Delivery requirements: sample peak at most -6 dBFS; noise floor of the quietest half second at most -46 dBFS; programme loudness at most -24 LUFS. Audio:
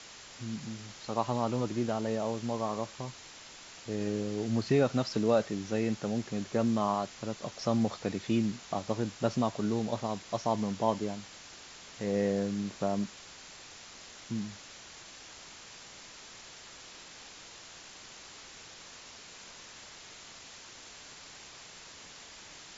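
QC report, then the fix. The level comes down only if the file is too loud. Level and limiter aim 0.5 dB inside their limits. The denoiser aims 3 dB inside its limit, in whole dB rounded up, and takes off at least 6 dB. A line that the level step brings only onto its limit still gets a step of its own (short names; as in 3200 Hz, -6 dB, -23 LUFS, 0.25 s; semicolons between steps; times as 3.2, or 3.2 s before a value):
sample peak -14.5 dBFS: OK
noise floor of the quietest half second -50 dBFS: OK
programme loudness -32.5 LUFS: OK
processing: none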